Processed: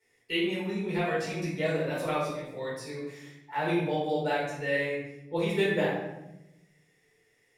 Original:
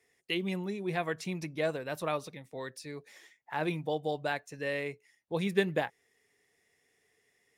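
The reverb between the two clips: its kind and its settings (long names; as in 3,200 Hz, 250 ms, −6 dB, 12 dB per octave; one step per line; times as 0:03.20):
rectangular room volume 310 cubic metres, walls mixed, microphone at 4.5 metres
level −8 dB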